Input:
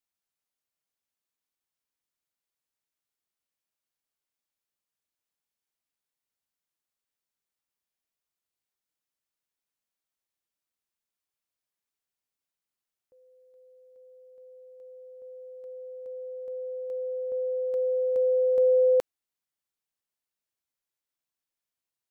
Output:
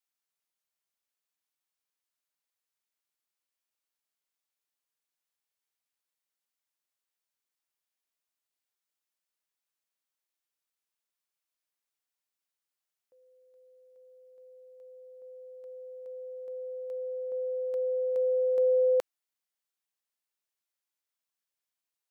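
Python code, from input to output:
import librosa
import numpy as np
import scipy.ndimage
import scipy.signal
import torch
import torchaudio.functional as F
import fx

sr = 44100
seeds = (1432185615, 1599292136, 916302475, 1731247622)

y = fx.highpass(x, sr, hz=550.0, slope=6)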